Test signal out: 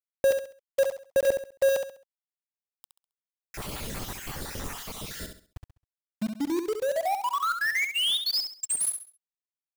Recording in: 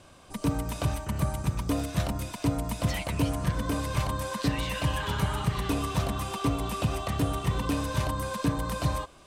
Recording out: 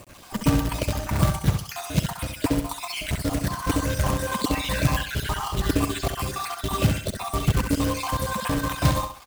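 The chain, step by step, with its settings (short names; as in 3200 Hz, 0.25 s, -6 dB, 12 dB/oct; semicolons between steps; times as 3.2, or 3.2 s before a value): random spectral dropouts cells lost 56%; companded quantiser 4-bit; on a send: feedback echo 67 ms, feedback 31%, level -7 dB; on the sum: gain +7 dB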